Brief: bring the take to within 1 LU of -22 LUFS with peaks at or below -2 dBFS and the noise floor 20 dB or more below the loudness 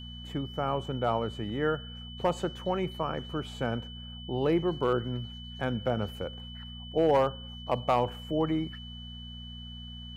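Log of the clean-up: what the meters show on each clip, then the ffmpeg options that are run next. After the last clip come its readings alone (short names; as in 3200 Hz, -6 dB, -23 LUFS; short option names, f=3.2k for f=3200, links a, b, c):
hum 60 Hz; harmonics up to 240 Hz; hum level -41 dBFS; steady tone 3000 Hz; tone level -45 dBFS; loudness -31.0 LUFS; peak -15.5 dBFS; loudness target -22.0 LUFS
-> -af "bandreject=f=60:t=h:w=4,bandreject=f=120:t=h:w=4,bandreject=f=180:t=h:w=4,bandreject=f=240:t=h:w=4"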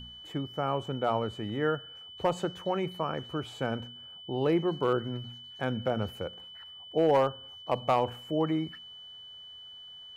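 hum none; steady tone 3000 Hz; tone level -45 dBFS
-> -af "bandreject=f=3k:w=30"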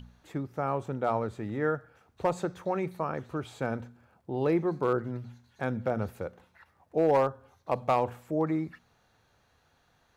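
steady tone none; loudness -31.0 LUFS; peak -16.0 dBFS; loudness target -22.0 LUFS
-> -af "volume=9dB"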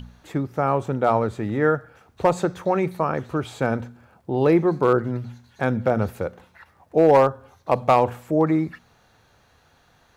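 loudness -22.0 LUFS; peak -7.0 dBFS; noise floor -59 dBFS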